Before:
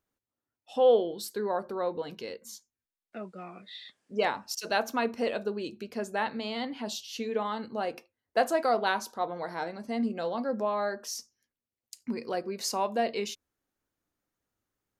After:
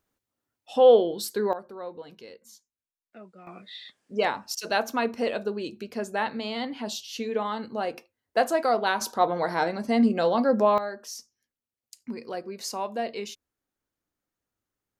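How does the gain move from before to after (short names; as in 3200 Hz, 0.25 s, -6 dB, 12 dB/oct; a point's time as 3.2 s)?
+5.5 dB
from 1.53 s -6.5 dB
from 3.47 s +2.5 dB
from 9.01 s +9 dB
from 10.78 s -2 dB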